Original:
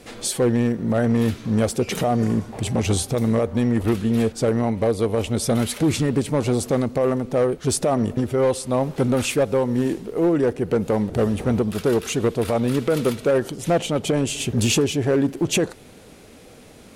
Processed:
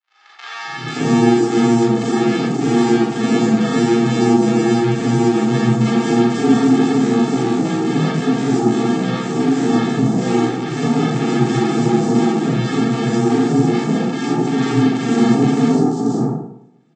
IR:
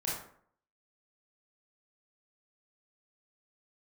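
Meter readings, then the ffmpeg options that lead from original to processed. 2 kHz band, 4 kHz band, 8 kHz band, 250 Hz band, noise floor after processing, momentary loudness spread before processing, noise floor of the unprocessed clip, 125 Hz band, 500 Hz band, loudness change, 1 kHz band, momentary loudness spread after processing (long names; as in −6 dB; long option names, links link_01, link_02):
+6.5 dB, +2.0 dB, −3.0 dB, +8.0 dB, −36 dBFS, 3 LU, −46 dBFS, +3.5 dB, +1.5 dB, +5.5 dB, +8.0 dB, 5 LU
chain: -filter_complex "[0:a]bass=frequency=250:gain=13,treble=frequency=4000:gain=-3,agate=range=-33dB:threshold=-24dB:ratio=3:detection=peak,asplit=2[link_01][link_02];[link_02]alimiter=limit=-13dB:level=0:latency=1,volume=-1dB[link_03];[link_01][link_03]amix=inputs=2:normalize=0,asoftclip=type=tanh:threshold=-6.5dB,aresample=16000,acrusher=samples=35:mix=1:aa=0.000001,aresample=44100,afreqshift=120,acrossover=split=1100|5000[link_04][link_05][link_06];[link_06]adelay=490[link_07];[link_04]adelay=570[link_08];[link_08][link_05][link_07]amix=inputs=3:normalize=0[link_09];[1:a]atrim=start_sample=2205,asetrate=34839,aresample=44100[link_10];[link_09][link_10]afir=irnorm=-1:irlink=0,volume=-8.5dB"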